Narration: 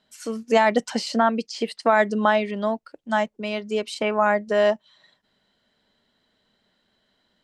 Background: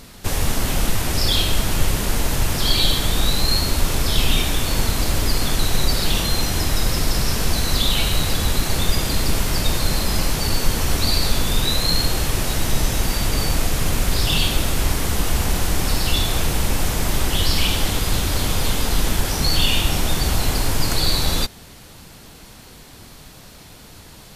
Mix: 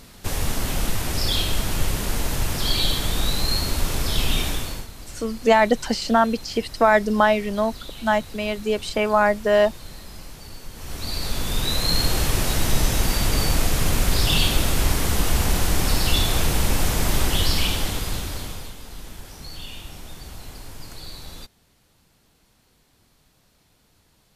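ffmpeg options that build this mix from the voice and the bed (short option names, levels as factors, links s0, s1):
-filter_complex "[0:a]adelay=4950,volume=1.26[s0];[1:a]volume=5.62,afade=t=out:st=4.48:d=0.39:silence=0.16788,afade=t=in:st=10.73:d=1.47:silence=0.112202,afade=t=out:st=17.22:d=1.52:silence=0.11885[s1];[s0][s1]amix=inputs=2:normalize=0"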